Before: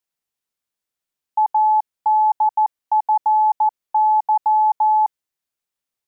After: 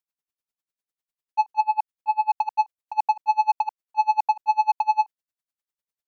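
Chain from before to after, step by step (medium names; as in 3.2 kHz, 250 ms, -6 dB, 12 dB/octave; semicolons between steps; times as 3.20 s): 1.60–2.31 s: dynamic bell 670 Hz, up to -4 dB, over -27 dBFS, Q 1.2; waveshaping leveller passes 1; logarithmic tremolo 10 Hz, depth 31 dB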